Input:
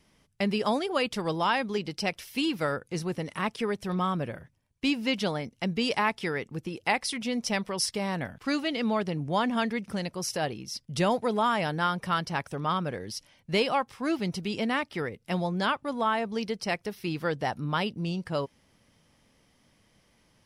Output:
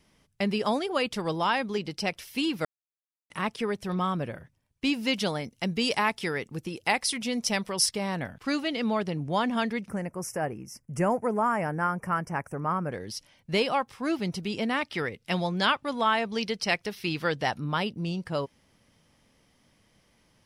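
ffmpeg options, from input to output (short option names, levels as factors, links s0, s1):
-filter_complex "[0:a]asettb=1/sr,asplit=3[s0][s1][s2];[s0]atrim=end=4.934[s3];[s1]atrim=start=4.93:end=7.89,asetpts=PTS-STARTPTS,afade=t=in:d=0.004:c=qsin,afade=t=out:st=2.956:d=0.004:c=qsin,highshelf=f=4800:g=7[s4];[s2]atrim=start=7.886[s5];[s3][s4]acrossfade=d=0.004:c1=hsin:c2=qsin[s6];[s6][s5]acrossfade=d=0.004:c1=qsin:c2=hsin,asettb=1/sr,asplit=3[s7][s8][s9];[s7]atrim=end=9.894[s10];[s8]atrim=start=9.89:end=12.92,asetpts=PTS-STARTPTS,afade=t=in:d=0.004:c=qsin,afade=t=out:st=3.026:d=0.004:c=qsin,asuperstop=centerf=3800:order=4:qfactor=0.82[s11];[s9]atrim=start=12.916[s12];[s10][s11]acrossfade=d=0.004:c1=hsin:c2=qsin[s13];[s13][s12]acrossfade=d=0.004:c1=qsin:c2=hsin,asettb=1/sr,asplit=3[s14][s15][s16];[s14]atrim=end=14.814[s17];[s15]atrim=start=14.81:end=17.59,asetpts=PTS-STARTPTS,afade=t=in:d=0.004:c=qsin,afade=t=out:st=2.776:d=0.004:c=qsin,equalizer=f=3400:w=0.51:g=7[s18];[s16]atrim=start=17.586[s19];[s17][s18]acrossfade=d=0.004:c1=hsin:c2=qsin[s20];[s20][s19]acrossfade=d=0.004:c1=qsin:c2=hsin,asplit=3[s21][s22][s23];[s21]atrim=end=2.65,asetpts=PTS-STARTPTS,afade=t=out:st=2.646:d=0.004:c=hsin[s24];[s22]atrim=start=2.65:end=3.3,asetpts=PTS-STARTPTS,volume=0[s25];[s23]atrim=start=3.3,asetpts=PTS-STARTPTS,afade=t=in:d=0.004:c=hsin[s26];[s24][s25][s26]concat=n=3:v=0:a=1"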